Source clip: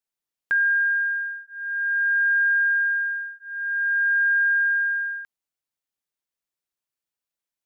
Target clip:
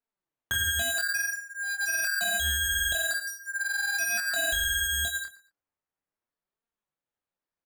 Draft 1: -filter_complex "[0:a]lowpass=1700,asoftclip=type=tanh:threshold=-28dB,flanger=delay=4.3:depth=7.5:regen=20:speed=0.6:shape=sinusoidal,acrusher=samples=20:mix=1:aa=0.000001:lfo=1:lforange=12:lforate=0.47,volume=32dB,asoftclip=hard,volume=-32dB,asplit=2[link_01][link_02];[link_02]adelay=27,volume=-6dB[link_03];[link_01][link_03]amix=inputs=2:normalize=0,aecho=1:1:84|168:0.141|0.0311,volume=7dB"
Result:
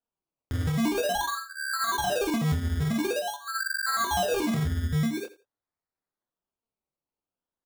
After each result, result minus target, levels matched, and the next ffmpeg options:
sample-and-hold swept by an LFO: distortion +18 dB; soft clipping: distortion +14 dB; echo 32 ms early
-filter_complex "[0:a]lowpass=1700,asoftclip=type=tanh:threshold=-28dB,flanger=delay=4.3:depth=7.5:regen=20:speed=0.6:shape=sinusoidal,acrusher=samples=7:mix=1:aa=0.000001:lfo=1:lforange=4.2:lforate=0.47,volume=32dB,asoftclip=hard,volume=-32dB,asplit=2[link_01][link_02];[link_02]adelay=27,volume=-6dB[link_03];[link_01][link_03]amix=inputs=2:normalize=0,aecho=1:1:84|168:0.141|0.0311,volume=7dB"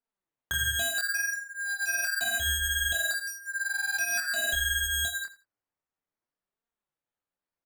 soft clipping: distortion +14 dB; echo 32 ms early
-filter_complex "[0:a]lowpass=1700,asoftclip=type=tanh:threshold=-17.5dB,flanger=delay=4.3:depth=7.5:regen=20:speed=0.6:shape=sinusoidal,acrusher=samples=7:mix=1:aa=0.000001:lfo=1:lforange=4.2:lforate=0.47,volume=32dB,asoftclip=hard,volume=-32dB,asplit=2[link_01][link_02];[link_02]adelay=27,volume=-6dB[link_03];[link_01][link_03]amix=inputs=2:normalize=0,aecho=1:1:84|168:0.141|0.0311,volume=7dB"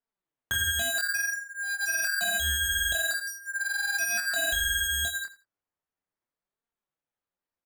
echo 32 ms early
-filter_complex "[0:a]lowpass=1700,asoftclip=type=tanh:threshold=-17.5dB,flanger=delay=4.3:depth=7.5:regen=20:speed=0.6:shape=sinusoidal,acrusher=samples=7:mix=1:aa=0.000001:lfo=1:lforange=4.2:lforate=0.47,volume=32dB,asoftclip=hard,volume=-32dB,asplit=2[link_01][link_02];[link_02]adelay=27,volume=-6dB[link_03];[link_01][link_03]amix=inputs=2:normalize=0,aecho=1:1:116|232:0.141|0.0311,volume=7dB"

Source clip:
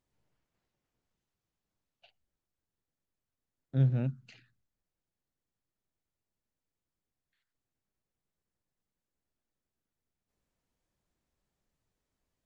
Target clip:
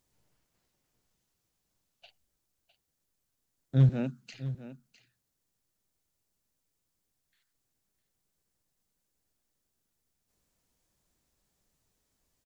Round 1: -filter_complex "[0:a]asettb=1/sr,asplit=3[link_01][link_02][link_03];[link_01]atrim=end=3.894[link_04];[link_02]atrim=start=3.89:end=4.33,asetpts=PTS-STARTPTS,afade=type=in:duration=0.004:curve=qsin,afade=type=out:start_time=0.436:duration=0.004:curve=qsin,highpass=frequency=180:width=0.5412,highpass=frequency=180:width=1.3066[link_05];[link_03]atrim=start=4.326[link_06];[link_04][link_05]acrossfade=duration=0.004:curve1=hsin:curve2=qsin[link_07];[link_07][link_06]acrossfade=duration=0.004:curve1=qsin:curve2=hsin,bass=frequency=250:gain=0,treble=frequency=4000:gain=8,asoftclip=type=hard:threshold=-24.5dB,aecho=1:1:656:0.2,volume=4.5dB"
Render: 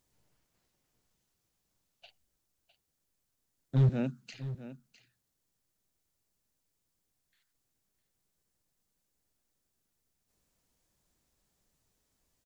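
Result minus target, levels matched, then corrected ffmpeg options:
hard clipping: distortion +19 dB
-filter_complex "[0:a]asettb=1/sr,asplit=3[link_01][link_02][link_03];[link_01]atrim=end=3.894[link_04];[link_02]atrim=start=3.89:end=4.33,asetpts=PTS-STARTPTS,afade=type=in:duration=0.004:curve=qsin,afade=type=out:start_time=0.436:duration=0.004:curve=qsin,highpass=frequency=180:width=0.5412,highpass=frequency=180:width=1.3066[link_05];[link_03]atrim=start=4.326[link_06];[link_04][link_05]acrossfade=duration=0.004:curve1=hsin:curve2=qsin[link_07];[link_07][link_06]acrossfade=duration=0.004:curve1=qsin:curve2=hsin,bass=frequency=250:gain=0,treble=frequency=4000:gain=8,asoftclip=type=hard:threshold=-17.5dB,aecho=1:1:656:0.2,volume=4.5dB"

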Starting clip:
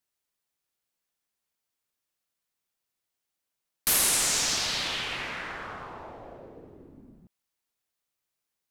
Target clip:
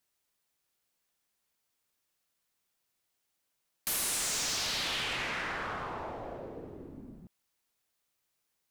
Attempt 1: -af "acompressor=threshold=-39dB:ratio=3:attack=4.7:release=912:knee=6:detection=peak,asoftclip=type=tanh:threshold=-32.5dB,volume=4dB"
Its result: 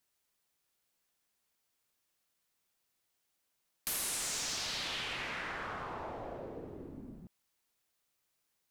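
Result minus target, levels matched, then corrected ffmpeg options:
downward compressor: peak gain reduction +7 dB
-af "acompressor=threshold=-28.5dB:ratio=3:attack=4.7:release=912:knee=6:detection=peak,asoftclip=type=tanh:threshold=-32.5dB,volume=4dB"

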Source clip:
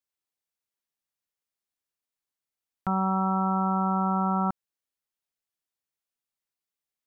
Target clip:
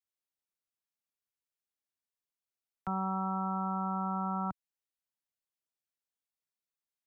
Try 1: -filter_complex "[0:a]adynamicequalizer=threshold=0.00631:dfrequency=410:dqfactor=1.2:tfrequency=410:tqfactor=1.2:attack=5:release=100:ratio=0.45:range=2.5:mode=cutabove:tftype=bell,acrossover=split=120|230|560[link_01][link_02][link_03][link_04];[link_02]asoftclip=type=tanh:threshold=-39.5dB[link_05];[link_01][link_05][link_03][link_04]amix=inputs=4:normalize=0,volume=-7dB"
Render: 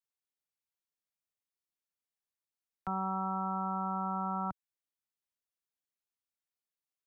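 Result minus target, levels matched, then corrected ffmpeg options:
soft clipping: distortion +12 dB
-filter_complex "[0:a]adynamicequalizer=threshold=0.00631:dfrequency=410:dqfactor=1.2:tfrequency=410:tqfactor=1.2:attack=5:release=100:ratio=0.45:range=2.5:mode=cutabove:tftype=bell,acrossover=split=120|230|560[link_01][link_02][link_03][link_04];[link_02]asoftclip=type=tanh:threshold=-30dB[link_05];[link_01][link_05][link_03][link_04]amix=inputs=4:normalize=0,volume=-7dB"

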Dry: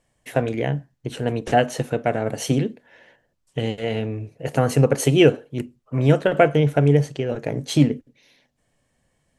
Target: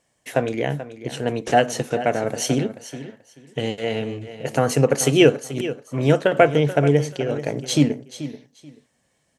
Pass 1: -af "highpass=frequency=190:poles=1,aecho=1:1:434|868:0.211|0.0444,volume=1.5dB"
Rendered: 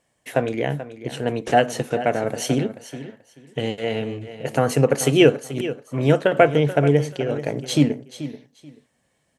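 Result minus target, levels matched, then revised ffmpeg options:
8,000 Hz band −3.5 dB
-af "highpass=frequency=190:poles=1,equalizer=frequency=6000:width_type=o:width=0.89:gain=4.5,aecho=1:1:434|868:0.211|0.0444,volume=1.5dB"

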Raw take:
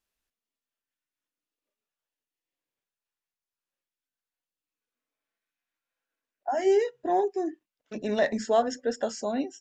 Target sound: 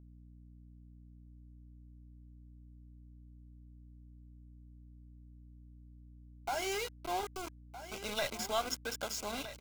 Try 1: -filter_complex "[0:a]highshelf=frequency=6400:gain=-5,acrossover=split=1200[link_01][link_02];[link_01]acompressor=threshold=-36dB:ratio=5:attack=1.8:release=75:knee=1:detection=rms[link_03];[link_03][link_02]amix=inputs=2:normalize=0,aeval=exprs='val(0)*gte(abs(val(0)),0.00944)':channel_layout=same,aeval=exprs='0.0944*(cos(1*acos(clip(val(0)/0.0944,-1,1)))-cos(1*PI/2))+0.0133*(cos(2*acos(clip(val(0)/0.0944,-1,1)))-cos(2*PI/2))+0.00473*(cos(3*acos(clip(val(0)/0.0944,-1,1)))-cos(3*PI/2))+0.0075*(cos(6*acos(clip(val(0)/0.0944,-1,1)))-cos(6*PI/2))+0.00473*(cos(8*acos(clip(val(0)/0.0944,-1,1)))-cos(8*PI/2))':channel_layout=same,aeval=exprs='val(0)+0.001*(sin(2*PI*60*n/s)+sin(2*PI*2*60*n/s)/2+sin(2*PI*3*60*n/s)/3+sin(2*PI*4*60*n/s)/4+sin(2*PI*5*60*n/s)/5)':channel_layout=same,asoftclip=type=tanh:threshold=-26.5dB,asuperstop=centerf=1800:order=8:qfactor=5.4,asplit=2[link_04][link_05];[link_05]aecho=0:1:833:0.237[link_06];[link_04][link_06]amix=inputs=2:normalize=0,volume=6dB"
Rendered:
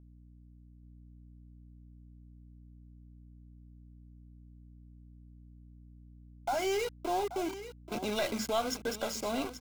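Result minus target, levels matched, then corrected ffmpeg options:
echo 431 ms early; downward compressor: peak gain reduction −7 dB
-filter_complex "[0:a]highshelf=frequency=6400:gain=-5,acrossover=split=1200[link_01][link_02];[link_01]acompressor=threshold=-44.5dB:ratio=5:attack=1.8:release=75:knee=1:detection=rms[link_03];[link_03][link_02]amix=inputs=2:normalize=0,aeval=exprs='val(0)*gte(abs(val(0)),0.00944)':channel_layout=same,aeval=exprs='0.0944*(cos(1*acos(clip(val(0)/0.0944,-1,1)))-cos(1*PI/2))+0.0133*(cos(2*acos(clip(val(0)/0.0944,-1,1)))-cos(2*PI/2))+0.00473*(cos(3*acos(clip(val(0)/0.0944,-1,1)))-cos(3*PI/2))+0.0075*(cos(6*acos(clip(val(0)/0.0944,-1,1)))-cos(6*PI/2))+0.00473*(cos(8*acos(clip(val(0)/0.0944,-1,1)))-cos(8*PI/2))':channel_layout=same,aeval=exprs='val(0)+0.001*(sin(2*PI*60*n/s)+sin(2*PI*2*60*n/s)/2+sin(2*PI*3*60*n/s)/3+sin(2*PI*4*60*n/s)/4+sin(2*PI*5*60*n/s)/5)':channel_layout=same,asoftclip=type=tanh:threshold=-26.5dB,asuperstop=centerf=1800:order=8:qfactor=5.4,asplit=2[link_04][link_05];[link_05]aecho=0:1:1264:0.237[link_06];[link_04][link_06]amix=inputs=2:normalize=0,volume=6dB"

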